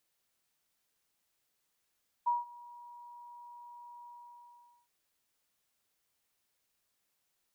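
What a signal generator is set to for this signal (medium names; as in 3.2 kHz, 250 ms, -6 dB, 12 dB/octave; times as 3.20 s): ADSR sine 959 Hz, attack 16 ms, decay 170 ms, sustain -23 dB, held 1.81 s, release 810 ms -25 dBFS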